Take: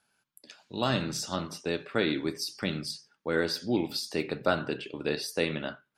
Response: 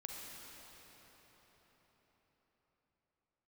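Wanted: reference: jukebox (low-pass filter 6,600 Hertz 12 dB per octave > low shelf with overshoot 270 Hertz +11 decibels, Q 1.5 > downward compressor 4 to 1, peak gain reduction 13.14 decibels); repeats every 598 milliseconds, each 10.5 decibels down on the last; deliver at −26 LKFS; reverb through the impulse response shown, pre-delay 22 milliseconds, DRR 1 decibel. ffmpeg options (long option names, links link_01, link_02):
-filter_complex "[0:a]aecho=1:1:598|1196|1794:0.299|0.0896|0.0269,asplit=2[link_01][link_02];[1:a]atrim=start_sample=2205,adelay=22[link_03];[link_02][link_03]afir=irnorm=-1:irlink=0,volume=1dB[link_04];[link_01][link_04]amix=inputs=2:normalize=0,lowpass=6600,lowshelf=frequency=270:width_type=q:width=1.5:gain=11,acompressor=threshold=-28dB:ratio=4,volume=5dB"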